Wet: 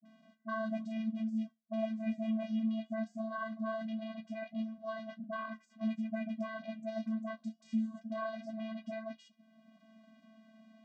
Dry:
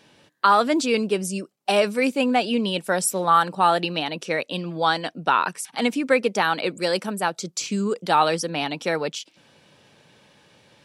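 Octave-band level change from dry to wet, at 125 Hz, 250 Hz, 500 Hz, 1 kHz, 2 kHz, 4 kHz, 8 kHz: below −10 dB, −9.0 dB, −18.0 dB, −24.0 dB, −20.5 dB, −28.5 dB, below −35 dB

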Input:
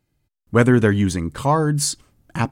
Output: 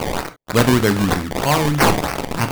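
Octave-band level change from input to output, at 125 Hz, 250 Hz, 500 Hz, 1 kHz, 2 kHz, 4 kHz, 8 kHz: −0.5, +1.0, +1.5, +5.0, +4.5, +7.0, 0.0 decibels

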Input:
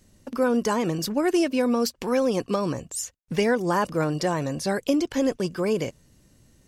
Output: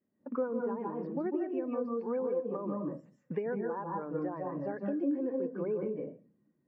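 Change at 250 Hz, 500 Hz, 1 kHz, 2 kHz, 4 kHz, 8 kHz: −10.0 dB, −9.0 dB, −11.5 dB, −18.5 dB, below −35 dB, below −40 dB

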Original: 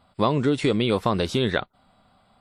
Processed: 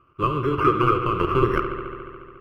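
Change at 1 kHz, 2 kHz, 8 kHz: +7.0 dB, +0.5 dB, below −10 dB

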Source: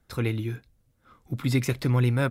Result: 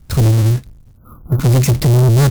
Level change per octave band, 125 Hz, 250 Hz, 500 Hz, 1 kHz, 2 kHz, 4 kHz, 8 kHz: +15.0, +9.5, +10.5, +10.5, +3.5, +11.0, +16.5 decibels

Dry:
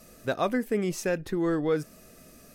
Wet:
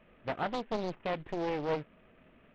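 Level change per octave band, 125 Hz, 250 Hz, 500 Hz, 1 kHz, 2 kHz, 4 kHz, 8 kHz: −8.0 dB, −10.0 dB, −7.0 dB, −1.0 dB, −6.5 dB, −3.0 dB, below −20 dB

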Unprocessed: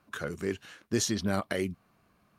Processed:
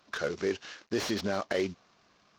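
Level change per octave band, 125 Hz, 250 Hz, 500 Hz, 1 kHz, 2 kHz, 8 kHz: −6.5, −2.5, +2.5, +1.0, +1.0, −8.5 decibels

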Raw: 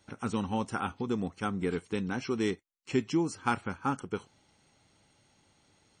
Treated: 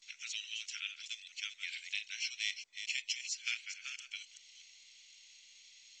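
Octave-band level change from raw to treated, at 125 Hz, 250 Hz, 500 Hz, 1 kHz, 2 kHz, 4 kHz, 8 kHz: below −40 dB, below −40 dB, below −40 dB, −31.0 dB, −0.5 dB, +7.5 dB, +5.5 dB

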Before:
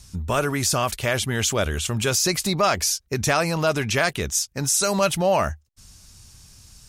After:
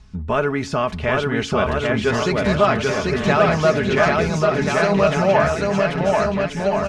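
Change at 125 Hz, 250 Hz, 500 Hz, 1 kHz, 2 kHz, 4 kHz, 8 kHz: +4.0, +7.0, +7.5, +5.0, +5.0, −3.5, −13.5 decibels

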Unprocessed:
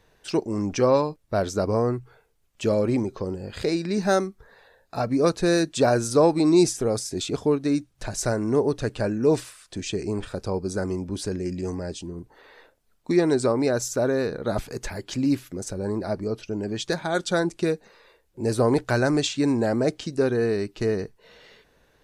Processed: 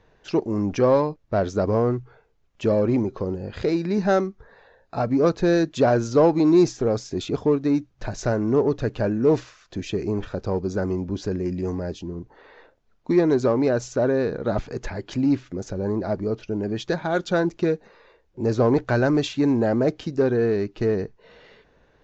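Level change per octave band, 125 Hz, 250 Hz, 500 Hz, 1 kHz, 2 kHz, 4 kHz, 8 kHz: +2.5, +2.0, +2.0, +1.0, −0.5, −4.5, −8.5 decibels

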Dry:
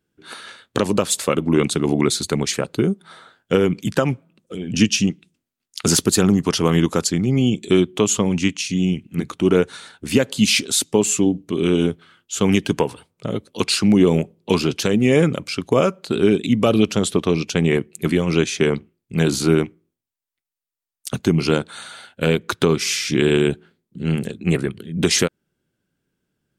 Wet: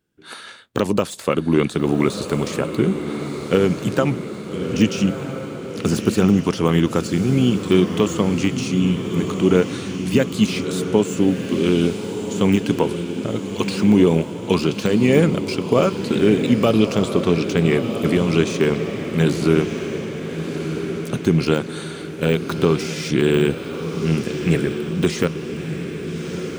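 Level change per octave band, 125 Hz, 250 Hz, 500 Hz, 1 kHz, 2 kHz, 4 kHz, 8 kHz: +1.0, +1.0, +1.0, +0.5, −1.0, −4.5, −10.0 decibels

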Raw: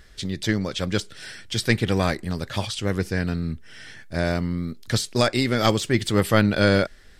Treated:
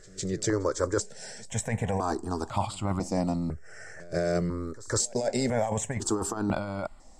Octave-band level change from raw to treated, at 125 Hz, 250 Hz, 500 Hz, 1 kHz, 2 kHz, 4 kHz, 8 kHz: −7.5, −7.0, −4.5, −3.5, −12.0, −12.5, +2.0 decibels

